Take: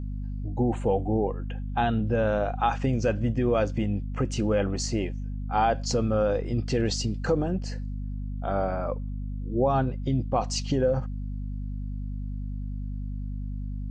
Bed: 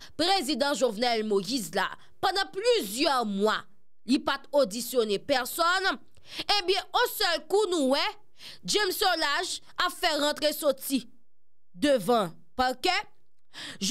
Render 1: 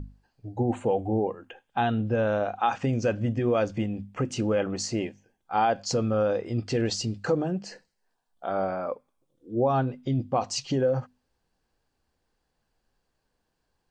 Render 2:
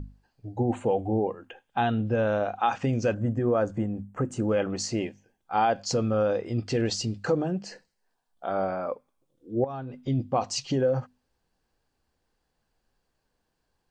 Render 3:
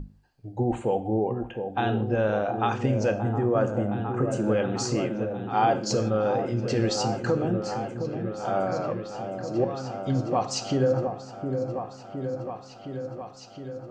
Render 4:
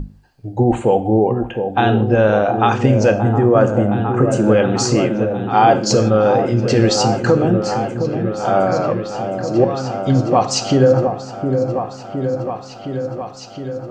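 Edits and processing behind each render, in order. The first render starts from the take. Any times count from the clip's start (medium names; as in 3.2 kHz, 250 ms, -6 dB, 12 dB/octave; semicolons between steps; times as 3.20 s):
hum notches 50/100/150/200/250 Hz
3.14–4.49 s: high-order bell 3.5 kHz -13 dB; 9.64–10.08 s: compression 8:1, threshold -32 dBFS
delay with an opening low-pass 714 ms, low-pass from 750 Hz, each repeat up 1 oct, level -6 dB; gated-style reverb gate 190 ms falling, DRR 9 dB
trim +11 dB; peak limiter -1 dBFS, peak gain reduction 1.5 dB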